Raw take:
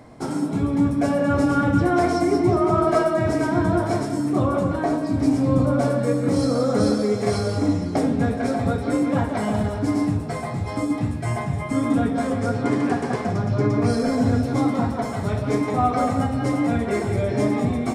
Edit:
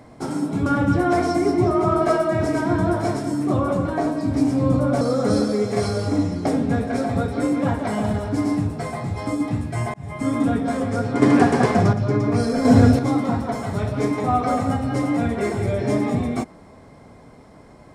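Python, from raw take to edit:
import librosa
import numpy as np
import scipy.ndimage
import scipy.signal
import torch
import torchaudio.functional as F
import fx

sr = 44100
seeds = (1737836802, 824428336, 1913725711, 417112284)

y = fx.edit(x, sr, fx.cut(start_s=0.66, length_s=0.86),
    fx.cut(start_s=5.87, length_s=0.64),
    fx.fade_in_span(start_s=11.44, length_s=0.4, curve='qsin'),
    fx.clip_gain(start_s=12.72, length_s=0.71, db=7.0),
    fx.clip_gain(start_s=14.15, length_s=0.34, db=7.0), tone=tone)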